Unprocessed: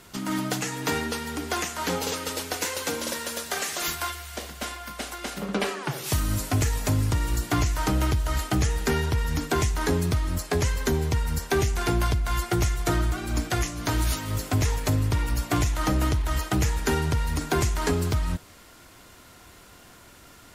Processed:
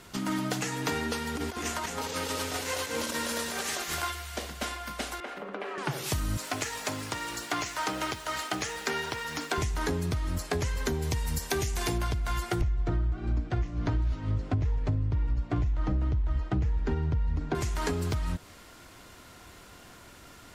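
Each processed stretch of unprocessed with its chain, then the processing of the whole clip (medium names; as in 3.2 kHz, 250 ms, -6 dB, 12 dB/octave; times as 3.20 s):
1.35–4.03 s: compressor with a negative ratio -32 dBFS, ratio -0.5 + delay 215 ms -5.5 dB
5.20–5.78 s: compression, threshold -30 dBFS + three-band isolator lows -22 dB, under 270 Hz, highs -18 dB, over 2.8 kHz
6.37–9.58 s: frequency weighting A + word length cut 8-bit, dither none
11.02–11.98 s: treble shelf 4.4 kHz +9 dB + band-stop 1.4 kHz, Q 24
12.61–17.55 s: low-pass 5.2 kHz + tilt EQ -3 dB/octave
whole clip: compression, threshold -26 dBFS; treble shelf 9.6 kHz -6 dB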